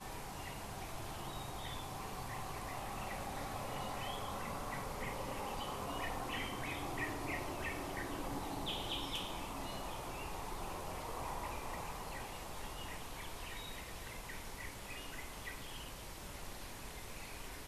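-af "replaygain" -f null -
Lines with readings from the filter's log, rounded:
track_gain = +24.9 dB
track_peak = 0.033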